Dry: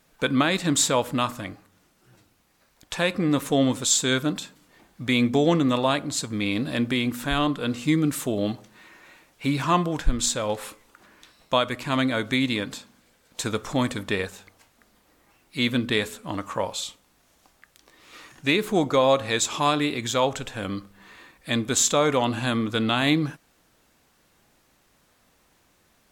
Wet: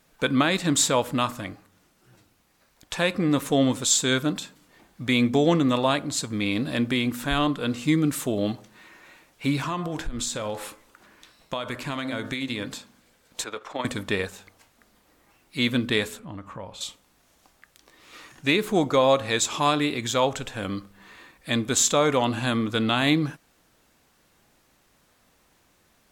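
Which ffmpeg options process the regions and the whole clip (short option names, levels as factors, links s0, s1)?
-filter_complex "[0:a]asettb=1/sr,asplit=3[s0][s1][s2];[s0]atrim=end=9.594[s3];[s1]atrim=start=9.59:end=12.67,asetpts=PTS-STARTPTS,afade=t=in:d=0.004:c=qsin,afade=t=out:st=3.076:d=0.004:c=qsin,bandreject=f=64.73:t=h:w=4,bandreject=f=129.46:t=h:w=4,bandreject=f=194.19:t=h:w=4,bandreject=f=258.92:t=h:w=4,bandreject=f=323.65:t=h:w=4,bandreject=f=388.38:t=h:w=4,bandreject=f=453.11:t=h:w=4,bandreject=f=517.84:t=h:w=4,bandreject=f=582.57:t=h:w=4,bandreject=f=647.3:t=h:w=4,bandreject=f=712.03:t=h:w=4,bandreject=f=776.76:t=h:w=4,bandreject=f=841.49:t=h:w=4,bandreject=f=906.22:t=h:w=4,bandreject=f=970.95:t=h:w=4,bandreject=f=1035.68:t=h:w=4,bandreject=f=1100.41:t=h:w=4,bandreject=f=1165.14:t=h:w=4,bandreject=f=1229.87:t=h:w=4,bandreject=f=1294.6:t=h:w=4,bandreject=f=1359.33:t=h:w=4,bandreject=f=1424.06:t=h:w=4,bandreject=f=1488.79:t=h:w=4,bandreject=f=1553.52:t=h:w=4,bandreject=f=1618.25:t=h:w=4,bandreject=f=1682.98:t=h:w=4,bandreject=f=1747.71:t=h:w=4,bandreject=f=1812.44:t=h:w=4,acompressor=threshold=0.0562:ratio=6:attack=3.2:release=140:knee=1:detection=peak[s4];[s2]atrim=start=12.666[s5];[s3][s4]acrossfade=d=0.004:c1=hsin:c2=qsin[s6];[s6][s5]acrossfade=d=0.004:c1=qsin:c2=hsin,asettb=1/sr,asplit=3[s7][s8][s9];[s7]atrim=end=13.444[s10];[s8]atrim=start=13.44:end=13.85,asetpts=PTS-STARTPTS,afade=t=in:d=0.004:c=qsin,afade=t=out:st=0.406:d=0.004:c=qsin,acrossover=split=380 3900:gain=0.0891 1 0.178[s11][s12][s13];[s11][s12][s13]amix=inputs=3:normalize=0,tremolo=f=22:d=0.519[s14];[s9]atrim=start=13.846[s15];[s10][s14]acrossfade=d=0.004:c1=hsin:c2=qsin[s16];[s16][s15]acrossfade=d=0.004:c1=qsin:c2=hsin,asettb=1/sr,asplit=3[s17][s18][s19];[s17]atrim=end=16.194[s20];[s18]atrim=start=16.19:end=16.81,asetpts=PTS-STARTPTS,afade=t=in:d=0.004:c=qsin,afade=t=out:st=0.616:d=0.004:c=qsin,bass=f=250:g=8,treble=f=4000:g=-11,acompressor=threshold=0.00708:ratio=2:attack=3.2:release=140:knee=1:detection=peak[s21];[s19]atrim=start=16.806[s22];[s20][s21]acrossfade=d=0.004:c1=hsin:c2=qsin[s23];[s23][s22]acrossfade=d=0.004:c1=qsin:c2=hsin"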